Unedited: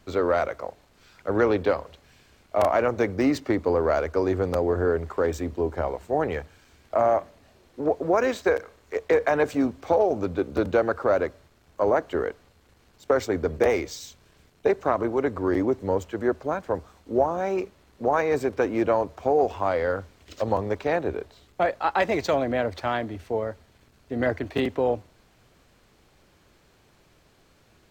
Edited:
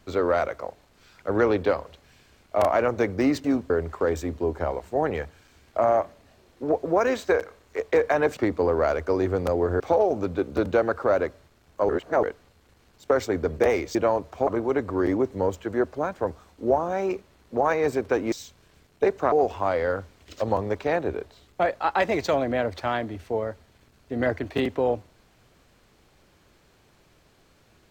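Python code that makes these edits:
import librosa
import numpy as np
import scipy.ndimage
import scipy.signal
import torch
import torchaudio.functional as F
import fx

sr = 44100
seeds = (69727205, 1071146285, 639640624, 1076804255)

y = fx.edit(x, sr, fx.swap(start_s=3.44, length_s=1.43, other_s=9.54, other_length_s=0.26),
    fx.reverse_span(start_s=11.89, length_s=0.34),
    fx.swap(start_s=13.95, length_s=1.0, other_s=18.8, other_length_s=0.52), tone=tone)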